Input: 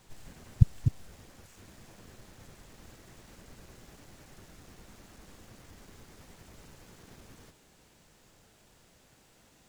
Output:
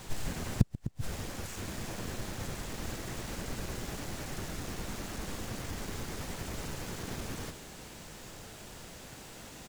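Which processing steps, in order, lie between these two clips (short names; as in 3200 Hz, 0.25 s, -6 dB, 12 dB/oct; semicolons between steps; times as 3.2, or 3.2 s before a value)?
outdoor echo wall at 22 m, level -15 dB; flipped gate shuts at -21 dBFS, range -33 dB; gain +14 dB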